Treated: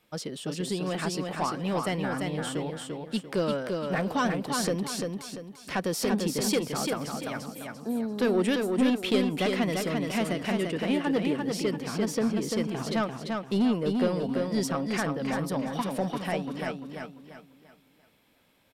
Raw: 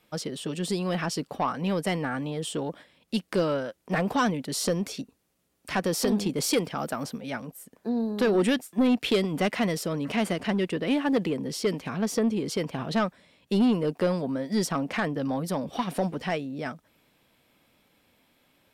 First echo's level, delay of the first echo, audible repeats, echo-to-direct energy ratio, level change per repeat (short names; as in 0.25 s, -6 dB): -4.0 dB, 0.343 s, 4, -3.5 dB, -9.0 dB